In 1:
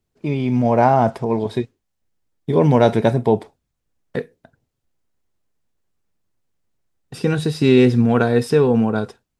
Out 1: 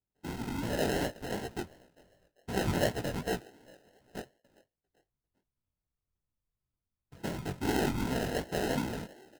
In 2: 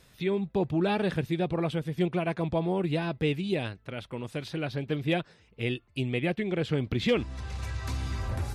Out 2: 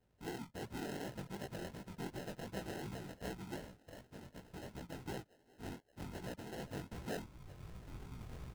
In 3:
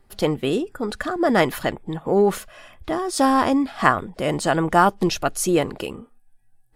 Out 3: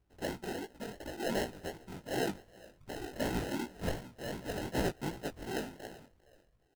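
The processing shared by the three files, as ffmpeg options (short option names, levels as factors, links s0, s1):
-filter_complex "[0:a]highshelf=f=5400:g=-5,asplit=4[s0][s1][s2][s3];[s1]adelay=397,afreqshift=140,volume=0.0708[s4];[s2]adelay=794,afreqshift=280,volume=0.0282[s5];[s3]adelay=1191,afreqshift=420,volume=0.0114[s6];[s0][s4][s5][s6]amix=inputs=4:normalize=0,afftfilt=real='hypot(re,im)*cos(2*PI*random(0))':imag='hypot(re,im)*sin(2*PI*random(1))':win_size=512:overlap=0.75,acrusher=samples=38:mix=1:aa=0.000001,flanger=delay=15.5:depth=7.7:speed=2.7,volume=0.398"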